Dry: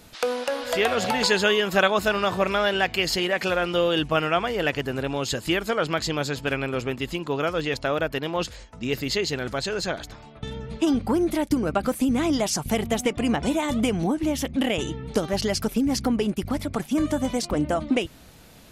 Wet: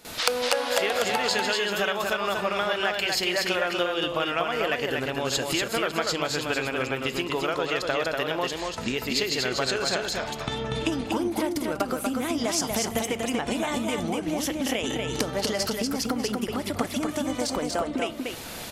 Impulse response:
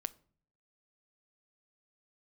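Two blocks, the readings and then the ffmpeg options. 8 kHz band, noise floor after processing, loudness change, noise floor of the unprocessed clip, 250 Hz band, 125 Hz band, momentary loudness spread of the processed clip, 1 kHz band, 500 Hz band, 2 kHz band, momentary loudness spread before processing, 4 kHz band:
+2.0 dB, −36 dBFS, −2.0 dB, −47 dBFS, −4.5 dB, −5.5 dB, 5 LU, −1.0 dB, −2.5 dB, −1.0 dB, 6 LU, +0.5 dB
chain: -filter_complex "[0:a]acompressor=threshold=-36dB:ratio=20,aecho=1:1:240:0.668,asplit=2[link_01][link_02];[1:a]atrim=start_sample=2205,asetrate=35721,aresample=44100,adelay=49[link_03];[link_02][link_03]afir=irnorm=-1:irlink=0,volume=15.5dB[link_04];[link_01][link_04]amix=inputs=2:normalize=0,aeval=exprs='0.596*(cos(1*acos(clip(val(0)/0.596,-1,1)))-cos(1*PI/2))+0.075*(cos(3*acos(clip(val(0)/0.596,-1,1)))-cos(3*PI/2))':channel_layout=same,lowshelf=frequency=230:gain=-12,volume=3dB"

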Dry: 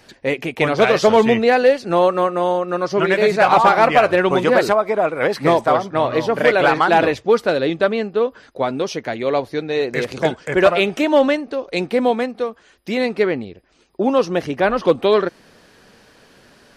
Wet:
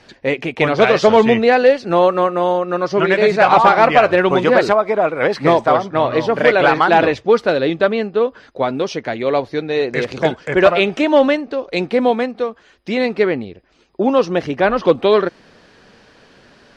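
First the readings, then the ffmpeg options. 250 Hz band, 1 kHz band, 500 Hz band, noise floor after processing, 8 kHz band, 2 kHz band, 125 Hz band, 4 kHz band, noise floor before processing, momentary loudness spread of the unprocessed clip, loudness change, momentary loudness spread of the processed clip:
+2.0 dB, +2.0 dB, +2.0 dB, −50 dBFS, can't be measured, +2.0 dB, +2.0 dB, +1.5 dB, −51 dBFS, 10 LU, +2.0 dB, 10 LU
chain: -af "lowpass=5600,volume=2dB"

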